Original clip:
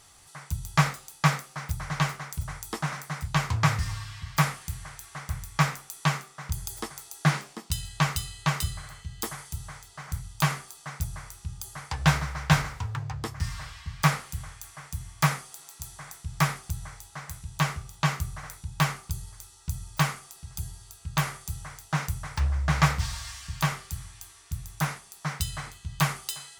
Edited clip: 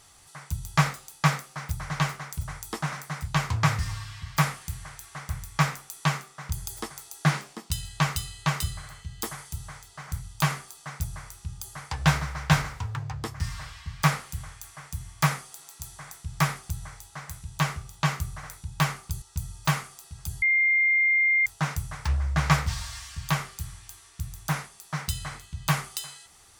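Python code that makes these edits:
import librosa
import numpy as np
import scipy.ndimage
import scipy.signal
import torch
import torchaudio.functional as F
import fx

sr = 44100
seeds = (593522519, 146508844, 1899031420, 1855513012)

y = fx.edit(x, sr, fx.cut(start_s=19.22, length_s=0.32),
    fx.bleep(start_s=20.74, length_s=1.04, hz=2110.0, db=-18.5), tone=tone)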